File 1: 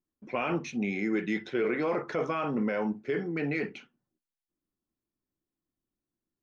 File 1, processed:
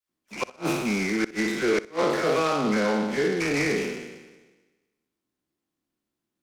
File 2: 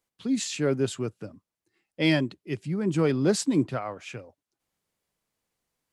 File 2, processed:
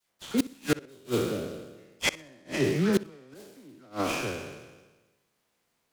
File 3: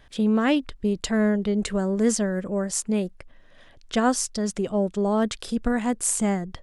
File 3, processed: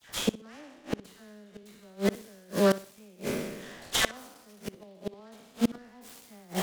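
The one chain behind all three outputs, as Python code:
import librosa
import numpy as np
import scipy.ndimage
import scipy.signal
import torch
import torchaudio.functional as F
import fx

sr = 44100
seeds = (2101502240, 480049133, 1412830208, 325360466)

p1 = fx.spec_trails(x, sr, decay_s=1.25)
p2 = fx.highpass(p1, sr, hz=160.0, slope=6)
p3 = fx.dispersion(p2, sr, late='lows', ms=93.0, hz=1600.0)
p4 = fx.gate_flip(p3, sr, shuts_db=-17.0, range_db=-33)
p5 = p4 + fx.echo_wet_lowpass(p4, sr, ms=62, feedback_pct=31, hz=3900.0, wet_db=-17.5, dry=0)
p6 = fx.noise_mod_delay(p5, sr, seeds[0], noise_hz=3000.0, depth_ms=0.035)
y = p6 * 10.0 ** (4.5 / 20.0)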